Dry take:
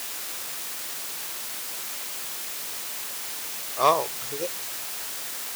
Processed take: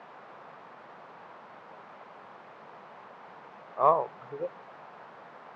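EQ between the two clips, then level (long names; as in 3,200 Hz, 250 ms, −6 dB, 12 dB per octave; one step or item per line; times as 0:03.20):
Chebyshev band-pass filter 160–1,000 Hz, order 2
high-frequency loss of the air 100 metres
parametric band 300 Hz −7 dB 0.71 octaves
0.0 dB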